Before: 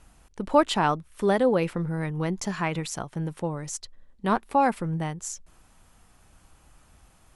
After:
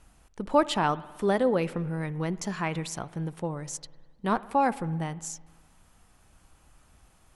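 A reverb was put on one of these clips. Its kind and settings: spring tank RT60 1.5 s, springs 55 ms, chirp 50 ms, DRR 17.5 dB; gain -2.5 dB

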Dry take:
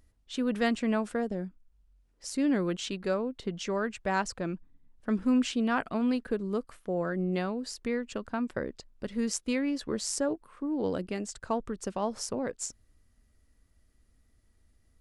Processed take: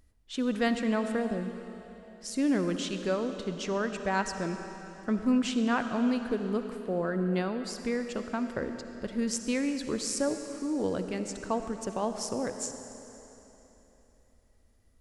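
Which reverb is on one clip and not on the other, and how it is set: digital reverb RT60 3.4 s, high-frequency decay 0.95×, pre-delay 25 ms, DRR 7.5 dB

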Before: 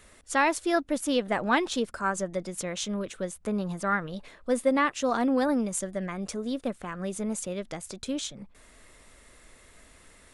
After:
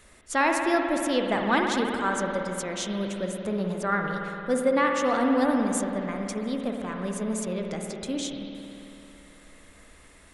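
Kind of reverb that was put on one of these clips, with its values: spring tank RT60 3 s, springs 55 ms, chirp 70 ms, DRR 1.5 dB

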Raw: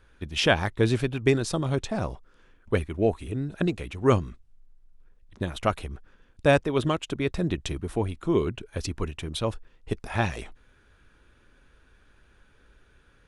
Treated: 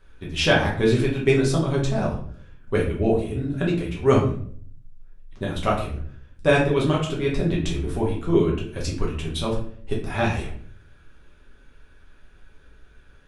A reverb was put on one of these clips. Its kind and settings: shoebox room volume 64 m³, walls mixed, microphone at 1.1 m; gain -2 dB

